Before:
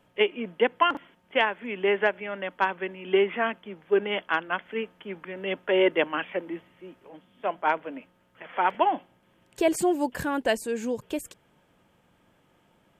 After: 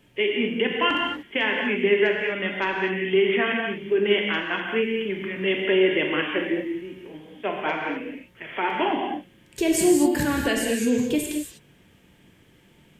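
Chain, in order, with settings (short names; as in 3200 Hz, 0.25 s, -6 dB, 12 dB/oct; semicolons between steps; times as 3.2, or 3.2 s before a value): band shelf 870 Hz -9.5 dB; limiter -21.5 dBFS, peak gain reduction 10.5 dB; non-linear reverb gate 0.27 s flat, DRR -0.5 dB; gain +7 dB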